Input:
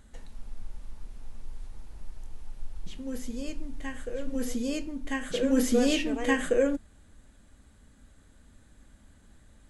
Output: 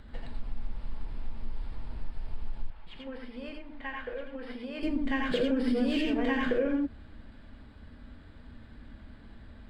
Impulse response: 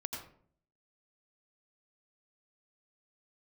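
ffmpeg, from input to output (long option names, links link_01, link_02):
-filter_complex "[0:a]aresample=11025,aresample=44100,asplit=2[link_01][link_02];[link_02]alimiter=limit=-23dB:level=0:latency=1,volume=1dB[link_03];[link_01][link_03]amix=inputs=2:normalize=0[link_04];[1:a]atrim=start_sample=2205,afade=type=out:start_time=0.15:duration=0.01,atrim=end_sample=7056[link_05];[link_04][link_05]afir=irnorm=-1:irlink=0,acrossover=split=620|3900[link_06][link_07][link_08];[link_08]aeval=exprs='max(val(0),0)':channel_layout=same[link_09];[link_06][link_07][link_09]amix=inputs=3:normalize=0,acompressor=threshold=-26dB:ratio=6,asettb=1/sr,asplit=3[link_10][link_11][link_12];[link_10]atrim=end=2.704[link_13];[link_11]atrim=start=2.7:end=4.83,asetpts=PTS-STARTPTS,afade=type=in:duration=0.004:curve=qsin,afade=type=out:start_time=2.126:duration=0.004:curve=qsin,acrossover=split=550 3400:gain=0.2 1 0.2[link_14][link_15][link_16];[link_14][link_15][link_16]amix=inputs=3:normalize=0[link_17];[link_12]atrim=start=4.826[link_18];[link_13][link_17]acrossfade=duration=0.004:curve1=hsin:curve2=qsin[link_19];[link_19][link_18]acrossfade=duration=0.004:curve1=qsin:curve2=hsin,volume=1.5dB"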